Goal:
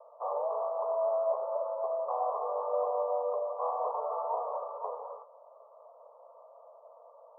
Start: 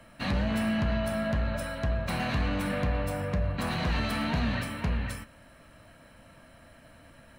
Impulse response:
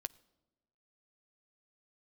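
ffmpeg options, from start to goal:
-af "asuperpass=centerf=720:order=20:qfactor=0.98,volume=1.78"

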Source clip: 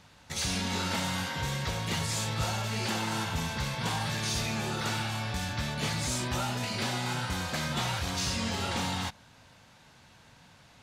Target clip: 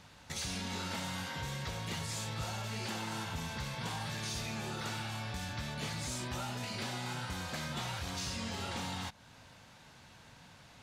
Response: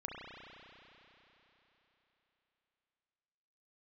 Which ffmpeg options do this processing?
-af "acompressor=threshold=0.00794:ratio=2"

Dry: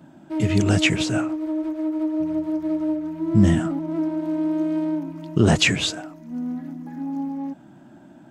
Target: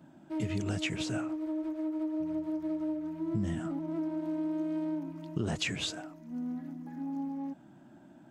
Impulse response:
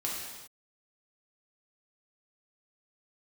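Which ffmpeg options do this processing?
-af "acompressor=threshold=0.0794:ratio=4,volume=0.398"

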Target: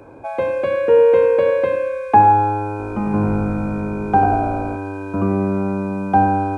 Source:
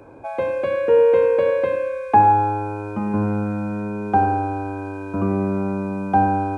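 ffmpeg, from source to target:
-filter_complex "[0:a]asettb=1/sr,asplit=3[s0][s1][s2];[s0]atrim=end=2.704[s3];[s1]atrim=start=2.7:end=4.77,asetpts=PTS-STARTPTS,afade=t=in:d=0.004:c=qsin,afade=t=out:st=2.066:d=0.004:c=qsin,asplit=8[s4][s5][s6][s7][s8][s9][s10][s11];[s5]adelay=92,afreqshift=-57,volume=0.316[s12];[s6]adelay=184,afreqshift=-114,volume=0.184[s13];[s7]adelay=276,afreqshift=-171,volume=0.106[s14];[s8]adelay=368,afreqshift=-228,volume=0.0617[s15];[s9]adelay=460,afreqshift=-285,volume=0.0359[s16];[s10]adelay=552,afreqshift=-342,volume=0.0207[s17];[s11]adelay=644,afreqshift=-399,volume=0.012[s18];[s4][s12][s13][s14][s15][s16][s17][s18]amix=inputs=8:normalize=0,atrim=end_sample=91287[s19];[s2]atrim=start=4.766[s20];[s3][s19]acrossfade=d=0.004:c1=hsin:c2=qsin[s21];[s21][s20]acrossfade=d=0.004:c1=qsin:c2=hsin,volume=1.33"

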